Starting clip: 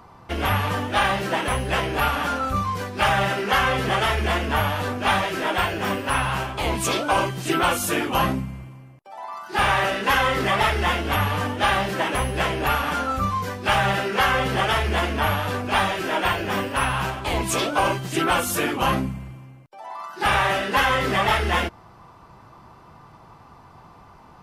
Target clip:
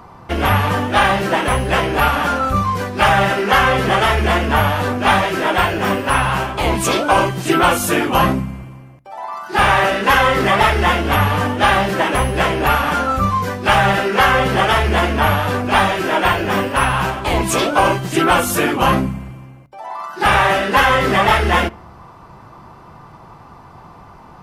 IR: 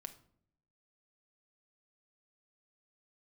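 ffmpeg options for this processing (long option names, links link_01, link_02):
-filter_complex "[0:a]asplit=2[link_01][link_02];[link_02]lowpass=2600[link_03];[1:a]atrim=start_sample=2205[link_04];[link_03][link_04]afir=irnorm=-1:irlink=0,volume=-4dB[link_05];[link_01][link_05]amix=inputs=2:normalize=0,volume=5dB"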